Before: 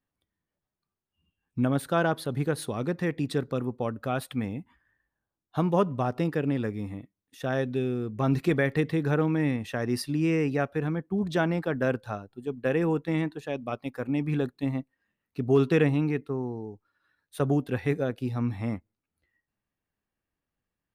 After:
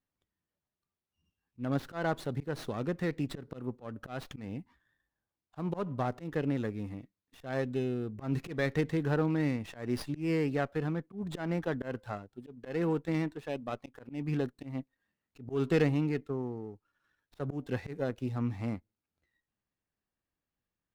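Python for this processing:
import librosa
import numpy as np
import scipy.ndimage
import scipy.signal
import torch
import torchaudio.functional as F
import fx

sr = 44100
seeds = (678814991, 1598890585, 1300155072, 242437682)

y = fx.auto_swell(x, sr, attack_ms=166.0)
y = fx.running_max(y, sr, window=5)
y = F.gain(torch.from_numpy(y), -4.0).numpy()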